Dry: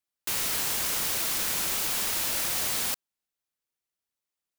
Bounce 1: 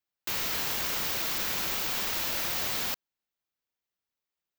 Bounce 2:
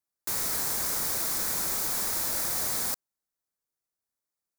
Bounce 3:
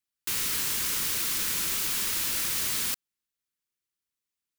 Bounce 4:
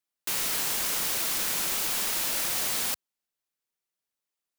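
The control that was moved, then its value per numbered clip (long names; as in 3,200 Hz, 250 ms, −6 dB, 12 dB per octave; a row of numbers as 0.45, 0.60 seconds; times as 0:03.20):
parametric band, centre frequency: 9,700, 2,900, 690, 73 Hertz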